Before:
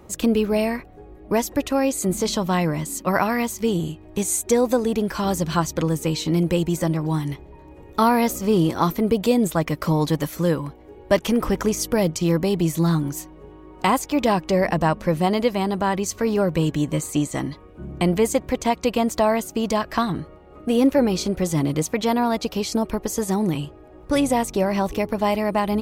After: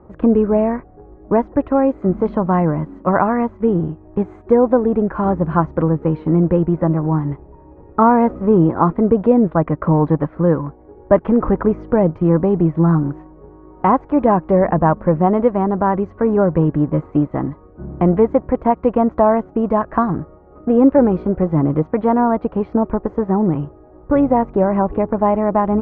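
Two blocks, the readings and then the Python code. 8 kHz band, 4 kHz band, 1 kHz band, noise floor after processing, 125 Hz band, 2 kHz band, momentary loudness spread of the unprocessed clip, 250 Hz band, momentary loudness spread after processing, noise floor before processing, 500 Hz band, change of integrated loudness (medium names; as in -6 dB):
under -40 dB, under -20 dB, +5.5 dB, -44 dBFS, +5.5 dB, -2.5 dB, 6 LU, +5.5 dB, 7 LU, -45 dBFS, +6.0 dB, +5.5 dB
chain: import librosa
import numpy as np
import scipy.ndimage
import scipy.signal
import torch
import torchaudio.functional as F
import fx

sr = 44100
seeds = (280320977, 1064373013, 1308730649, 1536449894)

p1 = np.sign(x) * np.maximum(np.abs(x) - 10.0 ** (-37.0 / 20.0), 0.0)
p2 = x + (p1 * librosa.db_to_amplitude(-3.0))
p3 = scipy.signal.sosfilt(scipy.signal.butter(4, 1400.0, 'lowpass', fs=sr, output='sos'), p2)
y = p3 * librosa.db_to_amplitude(1.5)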